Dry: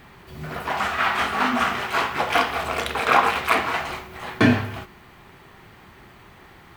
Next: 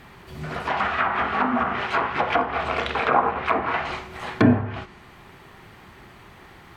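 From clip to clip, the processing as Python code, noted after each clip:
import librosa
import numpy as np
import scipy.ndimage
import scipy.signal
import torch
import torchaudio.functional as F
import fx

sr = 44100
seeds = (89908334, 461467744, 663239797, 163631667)

y = fx.env_lowpass_down(x, sr, base_hz=1000.0, full_db=-16.5)
y = y * 10.0 ** (1.0 / 20.0)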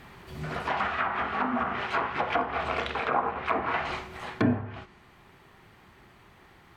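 y = fx.rider(x, sr, range_db=3, speed_s=0.5)
y = y * 10.0 ** (-5.5 / 20.0)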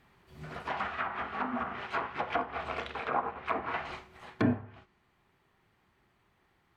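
y = fx.upward_expand(x, sr, threshold_db=-46.0, expansion=1.5)
y = y * 10.0 ** (-2.5 / 20.0)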